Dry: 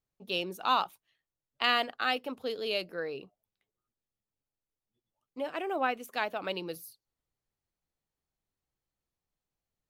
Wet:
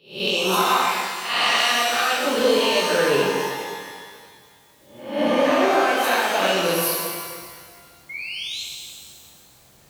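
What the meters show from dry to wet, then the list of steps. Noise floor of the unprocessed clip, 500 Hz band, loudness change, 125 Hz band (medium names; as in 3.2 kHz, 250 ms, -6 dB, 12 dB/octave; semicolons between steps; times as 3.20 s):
under -85 dBFS, +15.5 dB, +12.0 dB, +16.5 dB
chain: reverse spectral sustain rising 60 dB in 0.60 s; recorder AGC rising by 61 dB/s; high-pass 65 Hz; painted sound rise, 8.09–8.62 s, 2.1–4.3 kHz -35 dBFS; pitch-shifted reverb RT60 1.8 s, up +12 st, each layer -8 dB, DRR -3 dB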